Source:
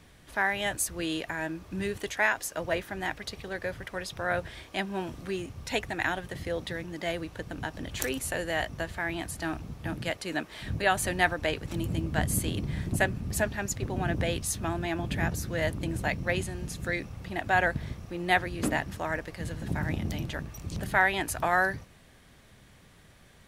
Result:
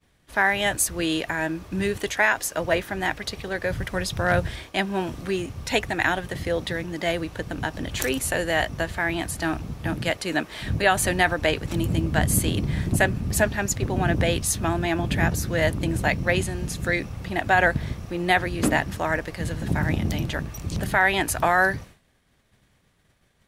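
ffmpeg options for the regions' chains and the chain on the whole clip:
-filter_complex "[0:a]asettb=1/sr,asplit=3[a][b][c];[a]atrim=end=3.704[d];[b]atrim=start=3.7:end=4.56,asetpts=PTS-STARTPTS,afade=t=in:d=0.004:c=qsin,afade=t=out:st=0.856:d=0.004:c=qsin,bass=f=250:g=8,treble=f=4k:g=3,volume=18.5dB,asoftclip=hard,volume=-18.5dB[e];[c]atrim=start=4.556[f];[d][e]acrossfade=d=0.004:c1=hsin:c2=qsin[g];[g][f]acrossfade=d=0.004:c1=qsin:c2=hsin,agate=range=-33dB:threshold=-45dB:ratio=3:detection=peak,alimiter=level_in=13.5dB:limit=-1dB:release=50:level=0:latency=1,volume=-6.5dB"

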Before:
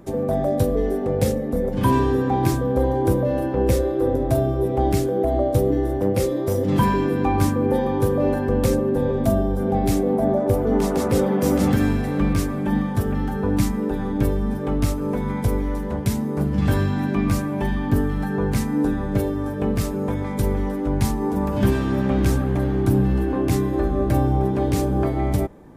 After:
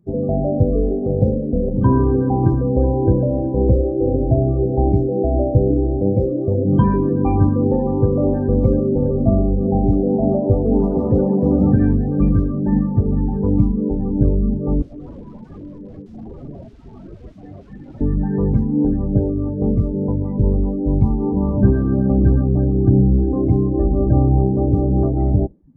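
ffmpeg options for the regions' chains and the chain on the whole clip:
-filter_complex "[0:a]asettb=1/sr,asplit=3[a][b][c];[a]atrim=end=14.824[d];[b]atrim=start=14.82:end=18.01,asetpts=PTS-STARTPTS,afade=t=in:d=0.004:c=qsin,afade=t=out:st=3.186:d=0.004:c=qsin,highpass=f=530:p=1,highshelf=f=6.9k:t=q:w=1.5:g=-7,aeval=exprs='(mod(22.4*val(0)+1,2)-1)/22.4':c=same[e];[c]atrim=start=18.006[f];[d][e]acrossfade=d=0.004:c1=hsin:c2=qsin[g];[g][f]acrossfade=d=0.004:c1=qsin:c2=hsin,lowpass=5.3k,lowshelf=f=480:g=10.5,afftdn=nr=27:nf=-22,volume=-4dB"

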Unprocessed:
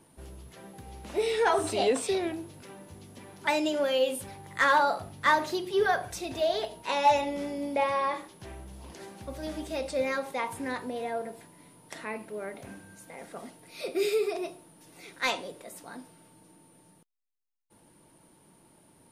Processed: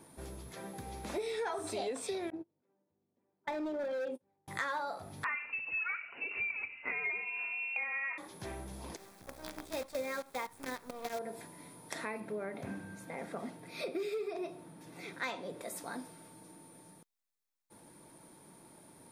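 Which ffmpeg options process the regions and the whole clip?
-filter_complex "[0:a]asettb=1/sr,asplit=3[a][b][c];[a]atrim=end=2.304[d];[b]atrim=start=2.3:end=4.48,asetpts=PTS-STARTPTS,afade=t=in:d=0.004:c=qsin,afade=t=out:st=2.176:d=0.004:c=qsin,bandpass=f=360:t=q:w=0.62,asoftclip=type=hard:threshold=-27.5dB,agate=range=-32dB:threshold=-38dB:ratio=16:release=100:detection=peak[e];[c]atrim=start=4.476[f];[d][e]acrossfade=d=0.004:c1=hsin:c2=qsin[g];[g][f]acrossfade=d=0.004:c1=qsin:c2=hsin,asettb=1/sr,asplit=3[h][i][j];[h]atrim=end=5.244[k];[i]atrim=start=5.24:end=8.18,asetpts=PTS-STARTPTS,afade=t=in:d=0.004:c=qsin,afade=t=out:st=2.936:d=0.004:c=qsin,asoftclip=type=hard:threshold=-20dB,lowpass=f=2.6k:t=q:w=0.5098,lowpass=f=2.6k:t=q:w=0.6013,lowpass=f=2.6k:t=q:w=0.9,lowpass=f=2.6k:t=q:w=2.563,afreqshift=-3000[l];[j]atrim=start=8.176[m];[k][l]acrossfade=d=0.004:c1=hsin:c2=qsin[n];[n][m]acrossfade=d=0.004:c1=qsin:c2=hsin,asettb=1/sr,asplit=3[o][p][q];[o]atrim=end=8.964[r];[p]atrim=start=8.96:end=11.19,asetpts=PTS-STARTPTS,afade=t=in:d=0.004:c=qsin,afade=t=out:st=2.226:d=0.004:c=qsin,agate=range=-9dB:threshold=-33dB:ratio=16:release=100:detection=peak,acrusher=bits=7:dc=4:mix=0:aa=0.000001[s];[q]atrim=start=11.186[t];[r][s]acrossfade=d=0.004:c1=hsin:c2=qsin[u];[u][t]acrossfade=d=0.004:c1=qsin:c2=hsin,asettb=1/sr,asplit=3[v][w][x];[v]atrim=end=12.204[y];[w]atrim=start=12.2:end=15.61,asetpts=PTS-STARTPTS,afade=t=in:d=0.004:c=qsin,afade=t=out:st=3.406:d=0.004:c=qsin,bass=f=250:g=10,treble=f=4k:g=-8,asoftclip=type=hard:threshold=-20.5dB,highpass=f=190:p=1[z];[x]atrim=start=15.606[aa];[y][z]acrossfade=d=0.004:c1=hsin:c2=qsin[ab];[ab][aa]acrossfade=d=0.004:c1=qsin:c2=hsin,lowshelf=f=86:g=-8.5,bandreject=f=2.9k:w=7,acompressor=threshold=-39dB:ratio=5,volume=3dB"

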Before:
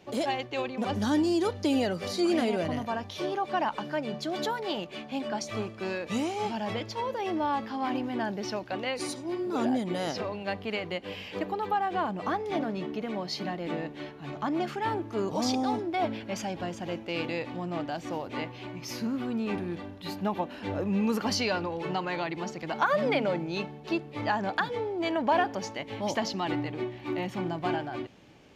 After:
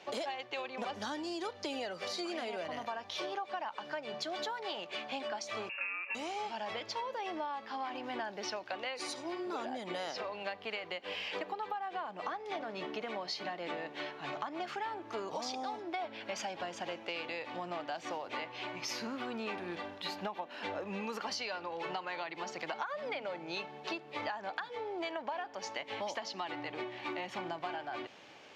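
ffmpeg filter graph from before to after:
-filter_complex "[0:a]asettb=1/sr,asplit=3[a][b][c];[a]atrim=end=5.694[d];[b]atrim=start=5.69:end=6.15,asetpts=PTS-STARTPTS,afade=t=in:d=0.004:c=qsin,afade=t=out:st=0.456:d=0.004:c=qsin,lowpass=f=2.5k:t=q:w=0.5098,lowpass=f=2.5k:t=q:w=0.6013,lowpass=f=2.5k:t=q:w=0.9,lowpass=f=2.5k:t=q:w=2.563,afreqshift=-2900,highpass=83[e];[c]atrim=start=6.146[f];[d][e]acrossfade=d=0.004:c1=hsin:c2=qsin[g];[g][f]acrossfade=d=0.004:c1=qsin:c2=hsin,highpass=f=180:p=1,acrossover=split=490 7300:gain=0.224 1 0.224[h][i][j];[h][i][j]amix=inputs=3:normalize=0,acompressor=threshold=-41dB:ratio=12,volume=5.5dB"

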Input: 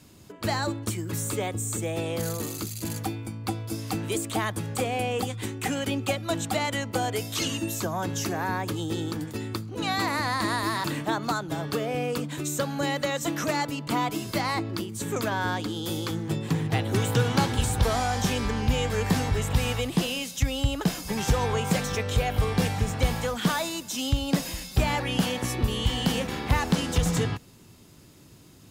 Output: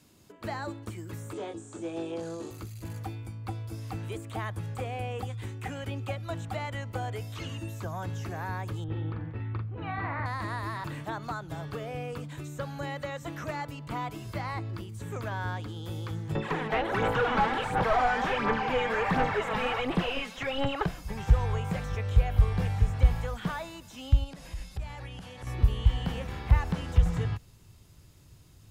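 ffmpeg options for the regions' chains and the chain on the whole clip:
-filter_complex "[0:a]asettb=1/sr,asplit=3[a][b][c];[a]atrim=end=1.334[d];[b]atrim=start=1.33:end=2.51,asetpts=PTS-STARTPTS,afade=t=in:d=0.004:c=qsin,afade=t=out:st=1.176:d=0.004:c=qsin,asoftclip=type=hard:threshold=-25dB,highpass=180,equalizer=f=330:t=q:w=4:g=8,equalizer=f=1.2k:t=q:w=4:g=-3,equalizer=f=2.1k:t=q:w=4:g=-9,lowpass=f=8.1k:w=0.5412,lowpass=f=8.1k:w=1.3066,asplit=2[e][f];[f]adelay=24,volume=-5dB[g];[e][g]amix=inputs=2:normalize=0,atrim=end_sample=52038[h];[c]atrim=start=2.506[i];[d][h]acrossfade=d=0.004:c1=hsin:c2=qsin[j];[j][i]acrossfade=d=0.004:c1=qsin:c2=hsin,asettb=1/sr,asplit=3[k][l][m];[k]atrim=end=8.844[n];[l]atrim=start=8.84:end=10.26,asetpts=PTS-STARTPTS,afade=t=in:d=0.004:c=qsin,afade=t=out:st=1.416:d=0.004:c=qsin,lowpass=f=2.4k:w=0.5412,lowpass=f=2.4k:w=1.3066,asplit=2[o][p];[p]adelay=44,volume=-4dB[q];[o][q]amix=inputs=2:normalize=0,atrim=end_sample=62622[r];[m]atrim=start=10.256[s];[n][r]acrossfade=d=0.004:c1=hsin:c2=qsin[t];[t][s]acrossfade=d=0.004:c1=qsin:c2=hsin,asettb=1/sr,asplit=3[u][v][w];[u]atrim=end=16.354[x];[v]atrim=start=16.35:end=20.86,asetpts=PTS-STARTPTS,afade=t=in:d=0.004:c=qsin,afade=t=out:st=4.506:d=0.004:c=qsin,highpass=f=170:w=0.5412,highpass=f=170:w=1.3066,aphaser=in_gain=1:out_gain=1:delay=4.7:decay=0.6:speed=1.4:type=sinusoidal,asplit=2[y][z];[z]highpass=f=720:p=1,volume=22dB,asoftclip=type=tanh:threshold=-7dB[aa];[y][aa]amix=inputs=2:normalize=0,lowpass=f=1.9k:p=1,volume=-6dB[ab];[w]atrim=start=20.856[ac];[x][ab]acrossfade=d=0.004:c1=hsin:c2=qsin[ad];[ad][ac]acrossfade=d=0.004:c1=qsin:c2=hsin,asettb=1/sr,asplit=3[ae][af][ag];[ae]atrim=end=24.244[ah];[af]atrim=start=24.24:end=25.47,asetpts=PTS-STARTPTS,afade=t=in:d=0.004:c=qsin,afade=t=out:st=1.226:d=0.004:c=qsin,lowpass=f=12k:w=0.5412,lowpass=f=12k:w=1.3066,acompressor=threshold=-32dB:ratio=10:attack=3.2:release=140:knee=1:detection=peak[ai];[ag]atrim=start=25.466[aj];[ah][ai]acrossfade=d=0.004:c1=hsin:c2=qsin[ak];[ak][aj]acrossfade=d=0.004:c1=qsin:c2=hsin,lowshelf=f=100:g=-5.5,acrossover=split=2600[al][am];[am]acompressor=threshold=-46dB:ratio=4:attack=1:release=60[an];[al][an]amix=inputs=2:normalize=0,asubboost=boost=10:cutoff=77,volume=-6.5dB"

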